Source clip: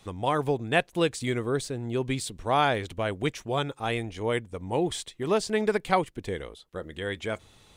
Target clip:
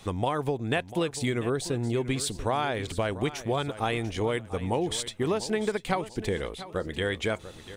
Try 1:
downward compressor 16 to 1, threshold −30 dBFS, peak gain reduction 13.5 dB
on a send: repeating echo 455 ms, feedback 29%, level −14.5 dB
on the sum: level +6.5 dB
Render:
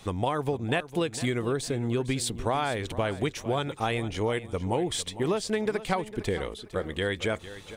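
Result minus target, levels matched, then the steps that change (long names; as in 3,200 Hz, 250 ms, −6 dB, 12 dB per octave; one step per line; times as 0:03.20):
echo 238 ms early
change: repeating echo 693 ms, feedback 29%, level −14.5 dB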